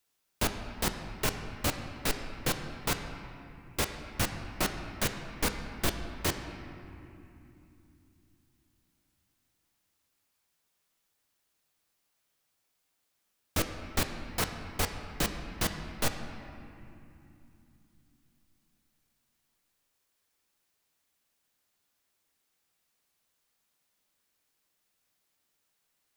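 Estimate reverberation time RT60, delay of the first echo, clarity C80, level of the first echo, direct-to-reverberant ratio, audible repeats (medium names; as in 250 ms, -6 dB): 2.9 s, no echo, 7.5 dB, no echo, 5.5 dB, no echo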